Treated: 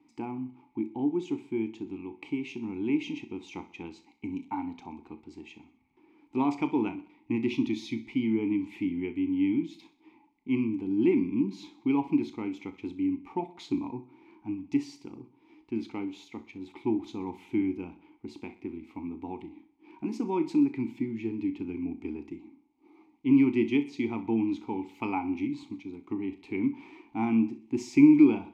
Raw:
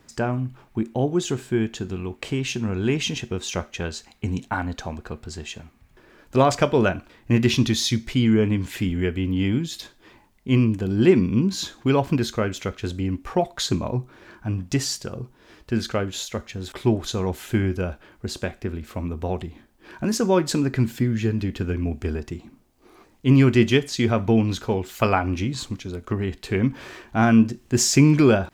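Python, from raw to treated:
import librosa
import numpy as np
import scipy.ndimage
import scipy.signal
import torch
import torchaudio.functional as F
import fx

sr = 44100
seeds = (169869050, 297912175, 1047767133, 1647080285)

y = fx.vowel_filter(x, sr, vowel='u')
y = fx.high_shelf(y, sr, hz=7400.0, db=6.0)
y = fx.notch(y, sr, hz=7200.0, q=28.0)
y = fx.doubler(y, sr, ms=35.0, db=-14.0)
y = fx.echo_feedback(y, sr, ms=63, feedback_pct=46, wet_db=-16.0)
y = F.gain(torch.from_numpy(y), 2.5).numpy()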